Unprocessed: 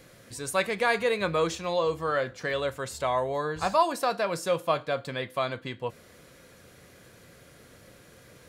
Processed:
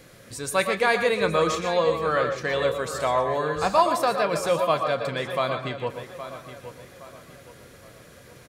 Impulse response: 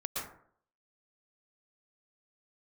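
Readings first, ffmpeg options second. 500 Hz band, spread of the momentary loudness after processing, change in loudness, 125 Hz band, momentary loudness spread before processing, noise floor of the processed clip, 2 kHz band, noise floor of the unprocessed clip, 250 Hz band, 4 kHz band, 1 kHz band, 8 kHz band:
+4.5 dB, 16 LU, +4.5 dB, +4.0 dB, 9 LU, −49 dBFS, +4.0 dB, −54 dBFS, +4.0 dB, +4.0 dB, +4.5 dB, +3.5 dB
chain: -filter_complex "[0:a]asplit=2[link_01][link_02];[link_02]adelay=818,lowpass=frequency=4100:poles=1,volume=-12dB,asplit=2[link_03][link_04];[link_04]adelay=818,lowpass=frequency=4100:poles=1,volume=0.38,asplit=2[link_05][link_06];[link_06]adelay=818,lowpass=frequency=4100:poles=1,volume=0.38,asplit=2[link_07][link_08];[link_08]adelay=818,lowpass=frequency=4100:poles=1,volume=0.38[link_09];[link_01][link_03][link_05][link_07][link_09]amix=inputs=5:normalize=0,asplit=2[link_10][link_11];[1:a]atrim=start_sample=2205,afade=type=out:start_time=0.2:duration=0.01,atrim=end_sample=9261[link_12];[link_11][link_12]afir=irnorm=-1:irlink=0,volume=-4.5dB[link_13];[link_10][link_13]amix=inputs=2:normalize=0"

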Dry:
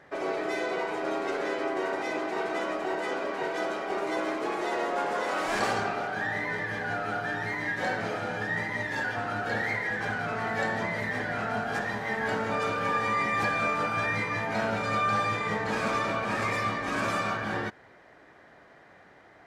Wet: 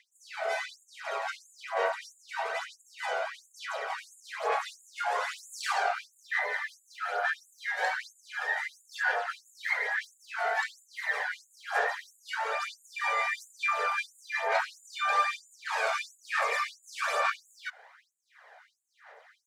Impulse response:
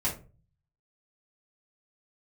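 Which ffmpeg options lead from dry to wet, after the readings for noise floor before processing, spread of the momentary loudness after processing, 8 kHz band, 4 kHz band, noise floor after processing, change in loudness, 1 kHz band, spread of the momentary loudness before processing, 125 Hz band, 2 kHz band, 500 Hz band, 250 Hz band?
−55 dBFS, 11 LU, +0.5 dB, −0.5 dB, −68 dBFS, −2.5 dB, −2.5 dB, 5 LU, below −40 dB, −1.5 dB, −6.0 dB, below −35 dB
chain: -af "aphaser=in_gain=1:out_gain=1:delay=1.4:decay=0.47:speed=1.1:type=sinusoidal,afftfilt=real='re*gte(b*sr/1024,390*pow(6800/390,0.5+0.5*sin(2*PI*1.5*pts/sr)))':imag='im*gte(b*sr/1024,390*pow(6800/390,0.5+0.5*sin(2*PI*1.5*pts/sr)))':win_size=1024:overlap=0.75"

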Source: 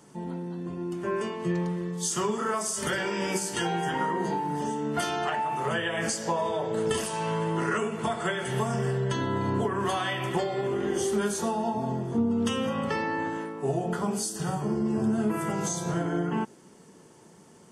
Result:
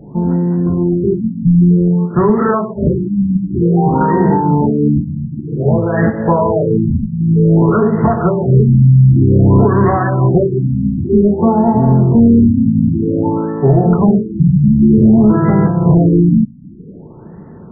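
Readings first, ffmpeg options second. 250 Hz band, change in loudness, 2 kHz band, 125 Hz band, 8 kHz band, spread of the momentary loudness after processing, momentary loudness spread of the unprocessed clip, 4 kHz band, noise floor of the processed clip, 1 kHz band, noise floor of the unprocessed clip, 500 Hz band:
+19.5 dB, +17.0 dB, +2.5 dB, +22.5 dB, below −40 dB, 7 LU, 4 LU, below −40 dB, −34 dBFS, +10.5 dB, −53 dBFS, +13.5 dB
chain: -af "aemphasis=mode=reproduction:type=riaa,apsyclip=16dB,afftfilt=real='re*lt(b*sr/1024,270*pow(2100/270,0.5+0.5*sin(2*PI*0.53*pts/sr)))':imag='im*lt(b*sr/1024,270*pow(2100/270,0.5+0.5*sin(2*PI*0.53*pts/sr)))':win_size=1024:overlap=0.75,volume=-3dB"

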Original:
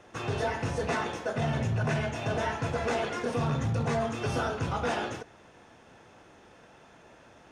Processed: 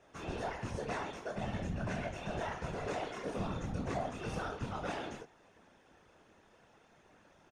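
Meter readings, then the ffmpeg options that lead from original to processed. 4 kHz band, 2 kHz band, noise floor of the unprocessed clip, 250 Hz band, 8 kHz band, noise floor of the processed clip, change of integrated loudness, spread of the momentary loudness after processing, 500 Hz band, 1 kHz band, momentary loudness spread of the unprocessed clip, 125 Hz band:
−9.0 dB, −9.5 dB, −56 dBFS, −7.5 dB, −9.0 dB, −65 dBFS, −9.0 dB, 3 LU, −9.0 dB, −8.0 dB, 4 LU, −11.0 dB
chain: -filter_complex "[0:a]asplit=2[link_01][link_02];[link_02]adelay=25,volume=-4dB[link_03];[link_01][link_03]amix=inputs=2:normalize=0,afftfilt=real='hypot(re,im)*cos(2*PI*random(0))':imag='hypot(re,im)*sin(2*PI*random(1))':win_size=512:overlap=0.75,volume=-4.5dB"

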